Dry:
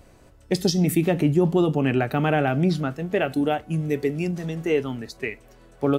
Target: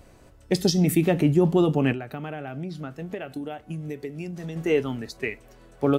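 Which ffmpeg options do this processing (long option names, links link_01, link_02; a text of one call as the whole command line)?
ffmpeg -i in.wav -filter_complex "[0:a]asettb=1/sr,asplit=3[link_01][link_02][link_03];[link_01]atrim=end=1.924[link_04];[link_02]atrim=start=1.92:end=4.56,asetpts=PTS-STARTPTS,afade=type=in:duration=0.004:curve=qsin,afade=type=out:start_time=2.636:duration=0.004:curve=qsin,acompressor=threshold=-30dB:ratio=10[link_05];[link_03]atrim=start=4.556[link_06];[link_04][link_05]acrossfade=duration=0.004:curve1=hsin:curve2=qsin[link_07];[link_07][link_06]acrossfade=duration=0.004:curve1=qsin:curve2=hsin" out.wav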